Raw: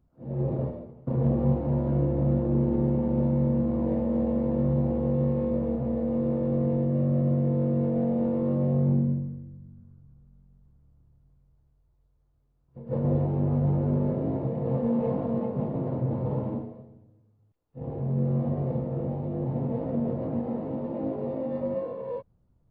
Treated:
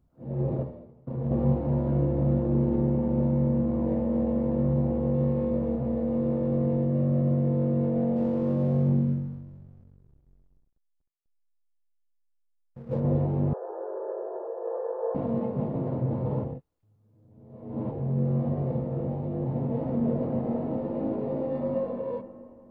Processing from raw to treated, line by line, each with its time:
0.63–1.31 gain -6 dB
2.81–5.15 air absorption 96 m
8.16–13 backlash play -46.5 dBFS
13.53–15.15 brick-wall FIR band-pass 350–1800 Hz
16.44–17.91 reverse
19.64–21.89 reverb throw, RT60 2.7 s, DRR 4 dB

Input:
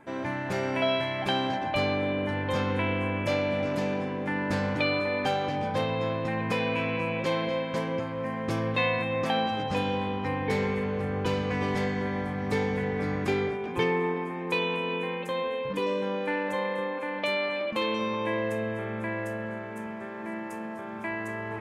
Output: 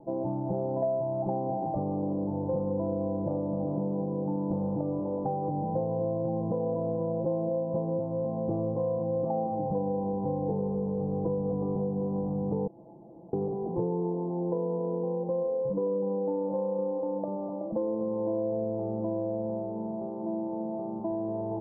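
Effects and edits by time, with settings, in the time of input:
12.67–13.33 room tone
whole clip: steep low-pass 830 Hz 48 dB/oct; comb 6 ms, depth 70%; compressor 3:1, threshold -31 dBFS; gain +3 dB

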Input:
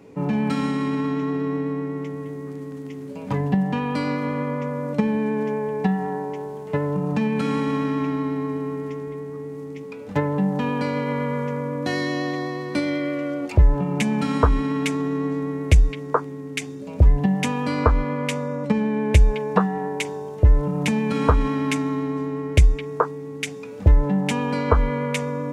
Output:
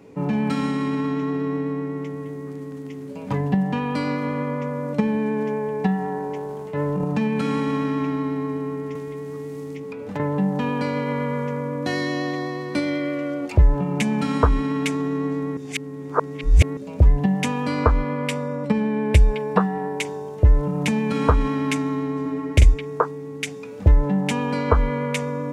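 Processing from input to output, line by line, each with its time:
6.17–7.05 transient shaper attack -7 dB, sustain +10 dB
8.95–10.2 three-band squash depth 100%
15.57–16.77 reverse
17.99–19.96 notch 6500 Hz, Q 7.2
22.21–22.74 doubler 45 ms -5 dB

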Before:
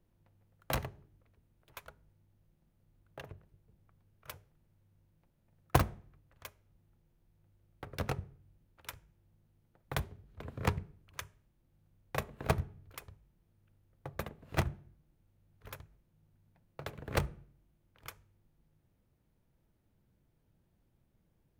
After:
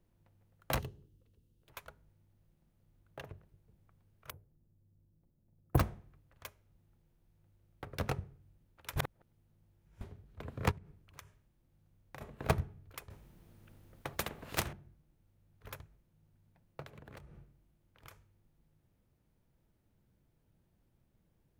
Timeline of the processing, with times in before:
0.79–1.66 spectral gain 540–2600 Hz -11 dB
4.3–5.78 EQ curve 310 Hz 0 dB, 5800 Hz -30 dB, 12000 Hz -5 dB
8.96–10.01 reverse
10.71–12.21 compressor, threshold -47 dBFS
13.1–14.73 spectral compressor 2:1
16.82–18.11 compressor 12:1, threshold -48 dBFS

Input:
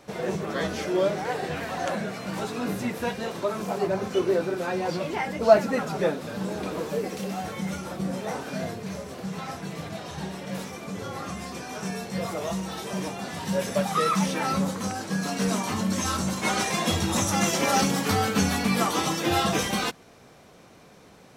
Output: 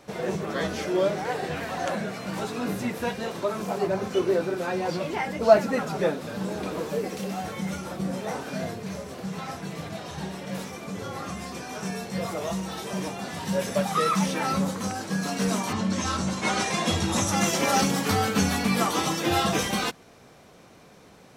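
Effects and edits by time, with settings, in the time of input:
15.72–17.35 LPF 5800 Hz -> 12000 Hz

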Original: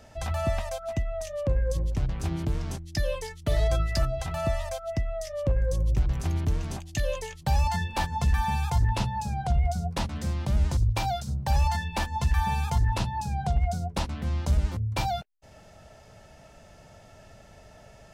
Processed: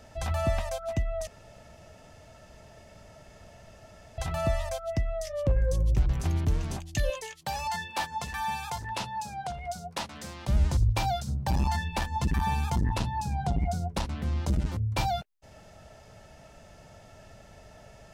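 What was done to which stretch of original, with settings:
1.27–4.18 room tone
7.1–10.48 HPF 620 Hz 6 dB/oct
11.27–14.79 core saturation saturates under 130 Hz

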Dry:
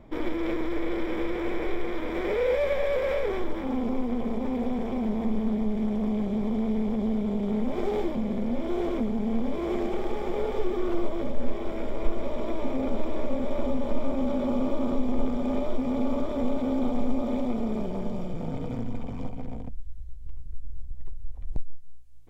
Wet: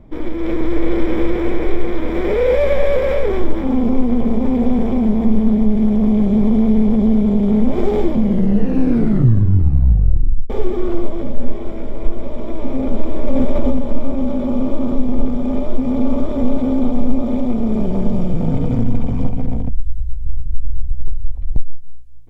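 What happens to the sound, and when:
8.21 tape stop 2.29 s
13.27–13.79 fast leveller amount 70%
whole clip: low shelf 340 Hz +10.5 dB; AGC; gain -1 dB

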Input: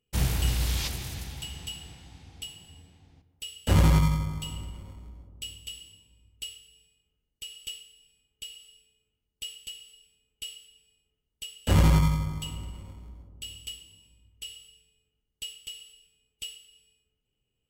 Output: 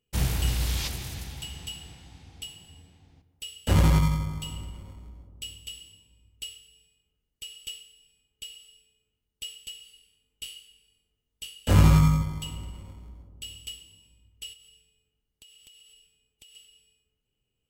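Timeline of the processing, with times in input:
9.81–12.22 flutter echo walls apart 3.4 m, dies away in 0.22 s
14.53–16.55 compressor, threshold -51 dBFS

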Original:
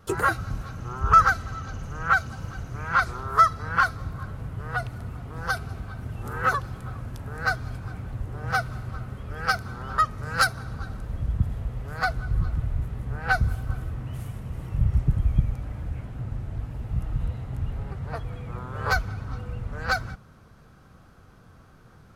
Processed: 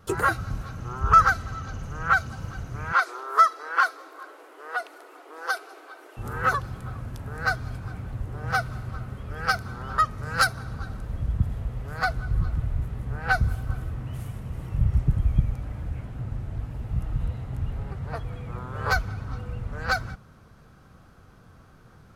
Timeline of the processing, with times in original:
2.93–6.17 brick-wall FIR high-pass 290 Hz

